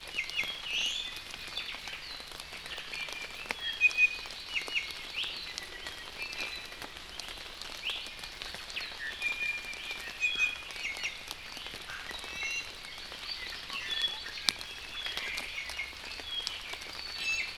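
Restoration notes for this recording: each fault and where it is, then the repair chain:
crackle 27/s -41 dBFS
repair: de-click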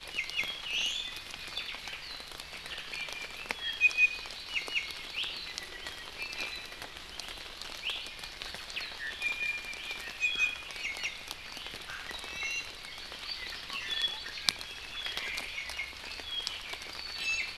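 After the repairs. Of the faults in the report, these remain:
none

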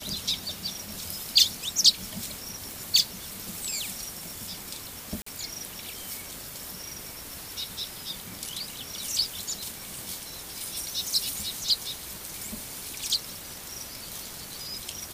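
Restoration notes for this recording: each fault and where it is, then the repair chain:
2.71 pop
5.22–5.26 gap 44 ms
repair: de-click; interpolate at 5.22, 44 ms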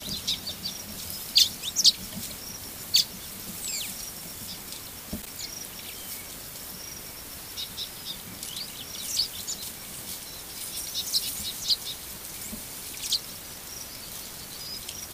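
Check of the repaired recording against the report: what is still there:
none

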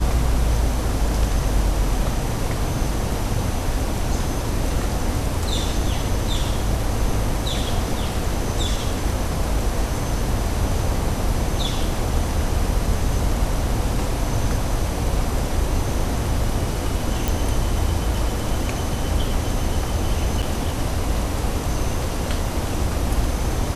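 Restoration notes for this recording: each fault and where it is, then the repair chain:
17.28 pop
20.42–20.43 gap 7 ms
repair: de-click; interpolate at 20.42, 7 ms

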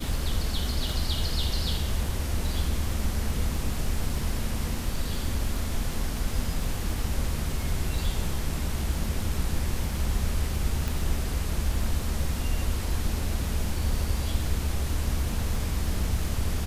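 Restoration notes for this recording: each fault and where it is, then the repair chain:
crackle 31/s -34 dBFS
10.88 pop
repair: de-click

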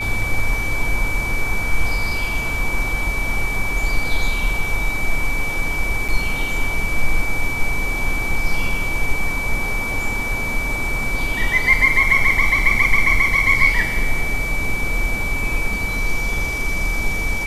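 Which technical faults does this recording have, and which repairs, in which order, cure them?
tone 2300 Hz -23 dBFS
6.08–6.09 gap 6.7 ms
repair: notch 2300 Hz, Q 30; interpolate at 6.08, 6.7 ms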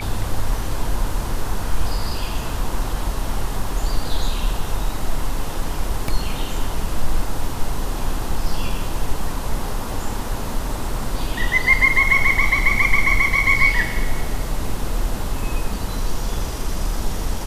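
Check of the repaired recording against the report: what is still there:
none

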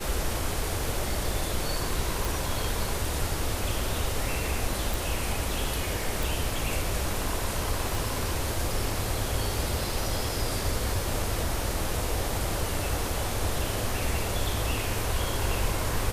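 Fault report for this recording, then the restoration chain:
2.25 pop
4.94 pop
6.23 pop
7.95 pop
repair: de-click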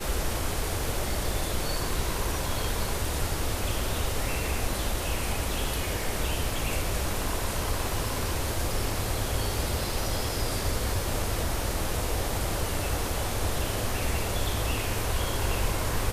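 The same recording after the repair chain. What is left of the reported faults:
7.95 pop

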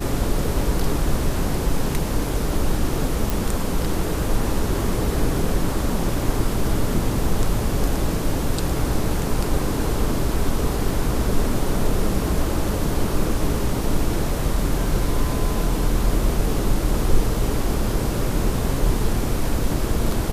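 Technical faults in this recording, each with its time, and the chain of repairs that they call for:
3.3 pop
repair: de-click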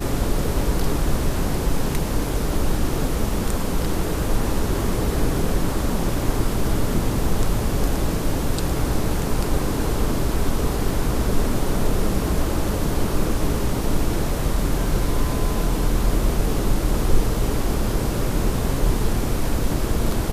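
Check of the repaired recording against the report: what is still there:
none

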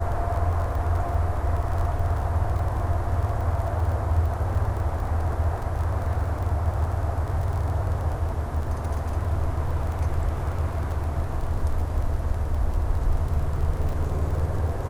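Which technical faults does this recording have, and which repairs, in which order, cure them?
crackle 30/s -31 dBFS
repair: de-click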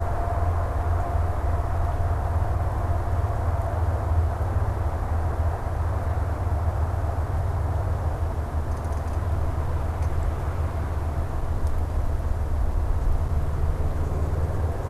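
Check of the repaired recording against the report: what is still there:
none

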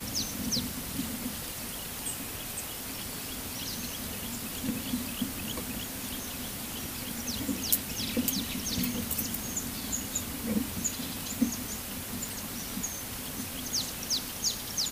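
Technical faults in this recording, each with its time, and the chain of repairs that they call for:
12.29 pop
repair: de-click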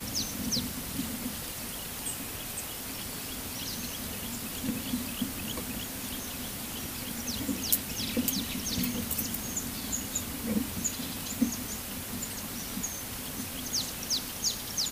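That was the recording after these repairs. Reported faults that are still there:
none

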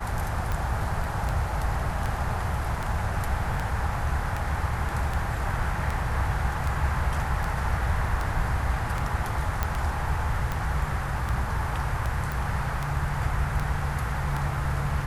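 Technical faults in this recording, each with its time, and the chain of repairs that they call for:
tick 78 rpm
9.63 pop -11 dBFS
12.32 pop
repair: de-click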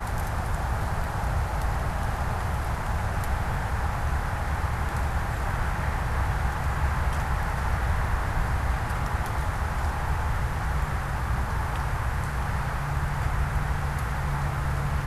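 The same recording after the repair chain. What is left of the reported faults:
none

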